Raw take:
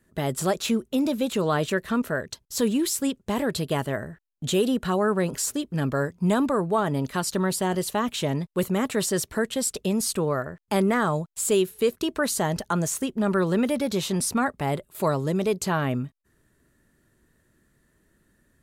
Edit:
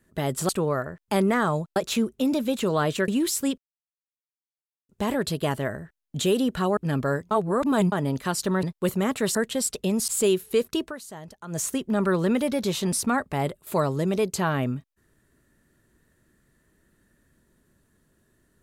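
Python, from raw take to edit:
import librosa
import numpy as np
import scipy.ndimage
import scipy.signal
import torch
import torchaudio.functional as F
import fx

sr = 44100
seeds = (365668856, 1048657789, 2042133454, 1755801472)

y = fx.edit(x, sr, fx.cut(start_s=1.81, length_s=0.86),
    fx.insert_silence(at_s=3.17, length_s=1.31),
    fx.cut(start_s=5.05, length_s=0.61),
    fx.reverse_span(start_s=6.2, length_s=0.61),
    fx.cut(start_s=7.52, length_s=0.85),
    fx.cut(start_s=9.09, length_s=0.27),
    fx.move(start_s=10.09, length_s=1.27, to_s=0.49),
    fx.fade_down_up(start_s=12.12, length_s=0.75, db=-15.5, fade_s=0.14, curve='qua'), tone=tone)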